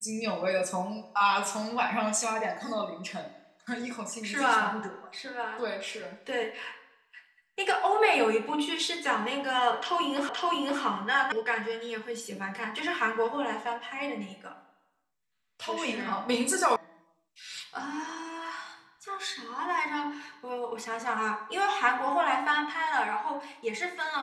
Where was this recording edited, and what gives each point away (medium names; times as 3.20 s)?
10.29 s: repeat of the last 0.52 s
11.32 s: sound stops dead
16.76 s: sound stops dead